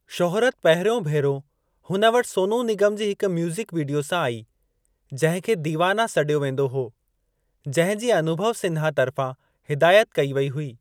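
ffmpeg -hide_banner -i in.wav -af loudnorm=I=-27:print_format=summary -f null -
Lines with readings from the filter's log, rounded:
Input Integrated:    -22.3 LUFS
Input True Peak:      -5.0 dBTP
Input LRA:             2.4 LU
Input Threshold:     -32.7 LUFS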